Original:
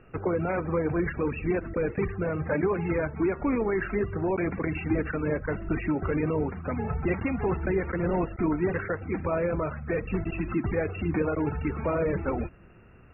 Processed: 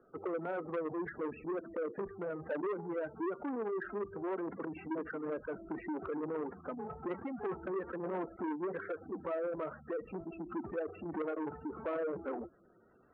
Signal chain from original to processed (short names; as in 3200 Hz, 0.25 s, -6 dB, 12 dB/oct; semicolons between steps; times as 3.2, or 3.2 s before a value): three-band isolator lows -18 dB, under 220 Hz, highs -23 dB, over 2100 Hz; spectral gate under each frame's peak -15 dB strong; core saturation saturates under 830 Hz; gain -6.5 dB